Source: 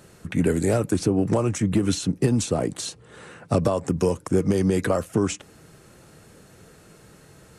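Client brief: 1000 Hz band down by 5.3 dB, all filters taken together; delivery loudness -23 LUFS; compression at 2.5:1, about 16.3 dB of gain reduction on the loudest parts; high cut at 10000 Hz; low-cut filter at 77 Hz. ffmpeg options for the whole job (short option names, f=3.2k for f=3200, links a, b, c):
-af "highpass=77,lowpass=10k,equalizer=f=1k:t=o:g=-7.5,acompressor=threshold=-43dB:ratio=2.5,volume=17dB"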